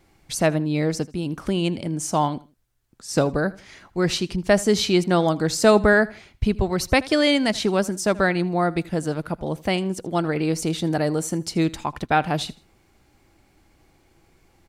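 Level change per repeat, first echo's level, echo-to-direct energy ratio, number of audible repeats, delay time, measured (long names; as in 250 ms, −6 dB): −10.0 dB, −21.0 dB, −20.5 dB, 2, 80 ms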